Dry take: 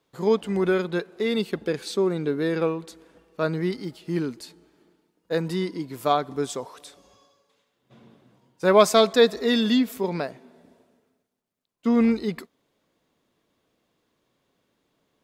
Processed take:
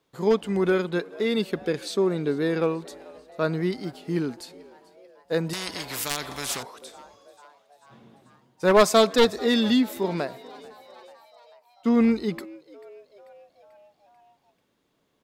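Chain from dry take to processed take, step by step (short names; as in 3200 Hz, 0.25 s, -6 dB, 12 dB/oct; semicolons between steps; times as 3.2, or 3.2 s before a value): one-sided fold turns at -14.5 dBFS; frequency-shifting echo 0.44 s, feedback 61%, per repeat +97 Hz, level -22.5 dB; 5.53–6.63 spectral compressor 4:1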